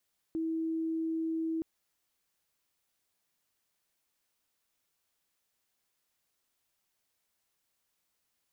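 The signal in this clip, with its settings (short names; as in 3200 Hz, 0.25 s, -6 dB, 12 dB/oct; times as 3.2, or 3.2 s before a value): tone sine 324 Hz -30 dBFS 1.27 s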